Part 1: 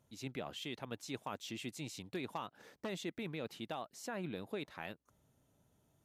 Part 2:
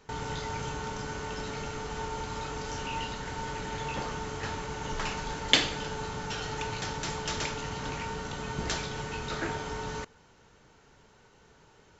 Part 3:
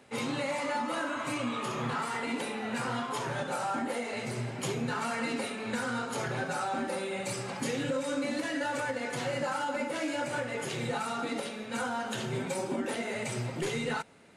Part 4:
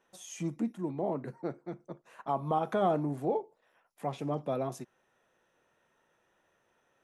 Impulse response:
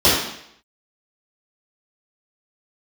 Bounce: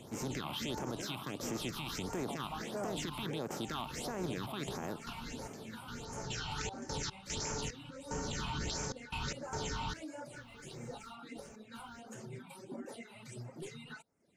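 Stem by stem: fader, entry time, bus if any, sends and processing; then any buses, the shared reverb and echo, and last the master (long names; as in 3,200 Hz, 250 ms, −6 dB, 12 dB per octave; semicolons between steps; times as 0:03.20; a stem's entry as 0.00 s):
+2.5 dB, 0.00 s, no send, compressor on every frequency bin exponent 0.4; multiband upward and downward expander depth 40%
+0.5 dB, 0.00 s, no send, high-shelf EQ 4,000 Hz +9 dB; gate pattern ".x.xx..xxxx" 74 BPM −24 dB; automatic ducking −12 dB, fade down 0.25 s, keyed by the first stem
−11.5 dB, 0.00 s, no send, reverb reduction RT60 0.56 s
−11.0 dB, 0.00 s, no send, no processing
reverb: not used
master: high-shelf EQ 8,600 Hz +6.5 dB; all-pass phaser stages 6, 1.5 Hz, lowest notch 450–3,700 Hz; brickwall limiter −29 dBFS, peak gain reduction 12.5 dB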